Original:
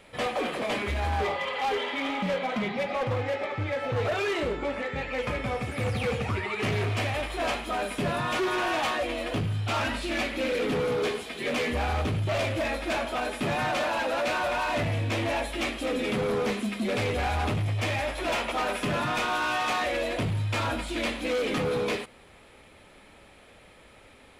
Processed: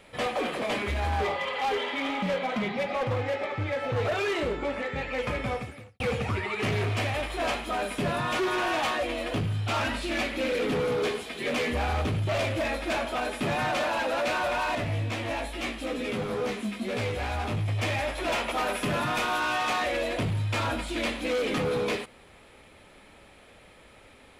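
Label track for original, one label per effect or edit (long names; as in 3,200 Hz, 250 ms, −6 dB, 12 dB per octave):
5.530000	6.000000	fade out quadratic
14.750000	17.680000	chorus effect 2.3 Hz, delay 16 ms, depth 2.7 ms
18.460000	19.400000	parametric band 12,000 Hz +5.5 dB 0.5 octaves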